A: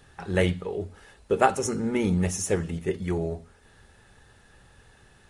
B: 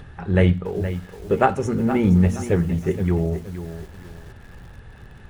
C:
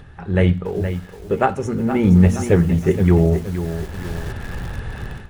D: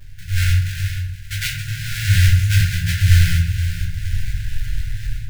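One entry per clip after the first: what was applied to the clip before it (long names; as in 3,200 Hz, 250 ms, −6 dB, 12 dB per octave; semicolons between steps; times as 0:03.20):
upward compression, threshold −42 dBFS; bass and treble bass +8 dB, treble −14 dB; feedback echo at a low word length 470 ms, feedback 35%, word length 7 bits, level −11 dB; level +2.5 dB
automatic gain control gain up to 15 dB; level −1 dB
each half-wave held at its own peak; linear-phase brick-wall band-stop 150–1,400 Hz; convolution reverb RT60 0.60 s, pre-delay 5 ms, DRR −3.5 dB; level −8 dB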